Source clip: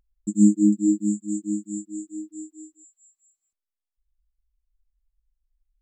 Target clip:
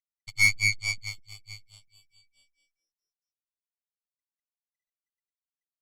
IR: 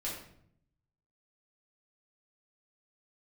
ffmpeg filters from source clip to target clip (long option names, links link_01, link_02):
-af "afftfilt=real='real(if(lt(b,920),b+92*(1-2*mod(floor(b/92),2)),b),0)':imag='imag(if(lt(b,920),b+92*(1-2*mod(floor(b/92),2)),b),0)':win_size=2048:overlap=0.75,aeval=exprs='0.562*(cos(1*acos(clip(val(0)/0.562,-1,1)))-cos(1*PI/2))+0.0891*(cos(3*acos(clip(val(0)/0.562,-1,1)))-cos(3*PI/2))+0.0891*(cos(4*acos(clip(val(0)/0.562,-1,1)))-cos(4*PI/2))+0.0447*(cos(7*acos(clip(val(0)/0.562,-1,1)))-cos(7*PI/2))+0.00562*(cos(8*acos(clip(val(0)/0.562,-1,1)))-cos(8*PI/2))':channel_layout=same,volume=-4.5dB" -ar 48000 -c:a libopus -b:a 48k